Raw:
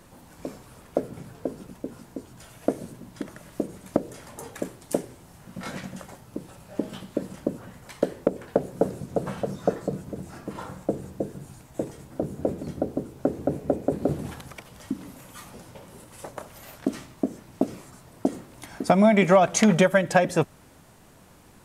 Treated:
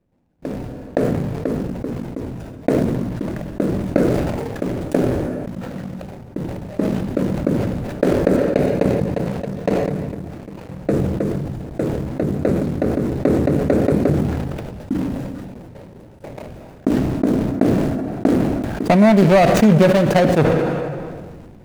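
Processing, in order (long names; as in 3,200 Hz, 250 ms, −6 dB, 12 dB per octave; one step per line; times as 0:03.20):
running median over 41 samples
noise gate with hold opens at −40 dBFS
0:08.36–0:10.69: power curve on the samples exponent 1.4
dense smooth reverb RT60 1.3 s, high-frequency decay 0.8×, DRR 18.5 dB
level that may fall only so fast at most 26 dB per second
level +6.5 dB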